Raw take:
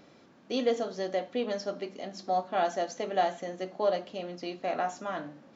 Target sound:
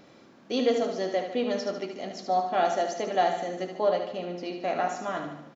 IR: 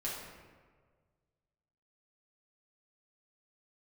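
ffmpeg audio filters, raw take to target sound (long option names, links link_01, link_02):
-filter_complex "[0:a]asettb=1/sr,asplit=3[link_01][link_02][link_03];[link_01]atrim=end=3.814[link_04];[link_02]atrim=start=3.81:end=4.63,asetpts=PTS-STARTPTS,afade=type=in:duration=0.004:curve=qsin,afade=type=out:start_time=0.816:duration=0.004:curve=qsin,highshelf=frequency=4000:gain=-6[link_05];[link_03]atrim=start=4.626[link_06];[link_04][link_05]acrossfade=duration=0.004:curve1=hsin:curve2=qsin[link_07];[link_07][link_06]acrossfade=duration=0.004:curve1=qsin:curve2=hsin,aecho=1:1:74|148|222|296|370|444|518:0.447|0.241|0.13|0.0703|0.038|0.0205|0.0111,volume=2.5dB"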